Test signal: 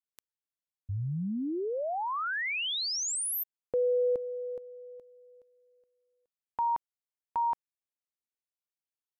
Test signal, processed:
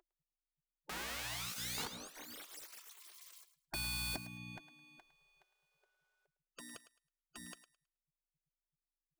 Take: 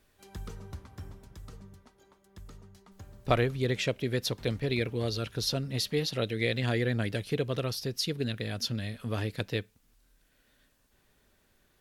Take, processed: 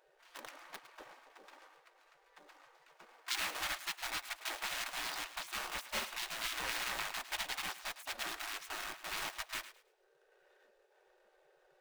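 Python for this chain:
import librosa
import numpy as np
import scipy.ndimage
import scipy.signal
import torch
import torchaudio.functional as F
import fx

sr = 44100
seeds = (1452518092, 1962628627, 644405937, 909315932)

p1 = scipy.ndimage.median_filter(x, 41, mode='constant')
p2 = fx.high_shelf(p1, sr, hz=7000.0, db=-8.5)
p3 = fx.add_hum(p2, sr, base_hz=60, snr_db=21)
p4 = (np.mod(10.0 ** (33.0 / 20.0) * p3 + 1.0, 2.0) - 1.0) / 10.0 ** (33.0 / 20.0)
p5 = p3 + (p4 * 10.0 ** (-11.5 / 20.0))
p6 = fx.notch_comb(p5, sr, f0_hz=340.0)
p7 = fx.spec_gate(p6, sr, threshold_db=-30, keep='weak')
p8 = p7 + fx.echo_thinned(p7, sr, ms=107, feedback_pct=23, hz=630.0, wet_db=-13.0, dry=0)
y = p8 * 10.0 ** (12.5 / 20.0)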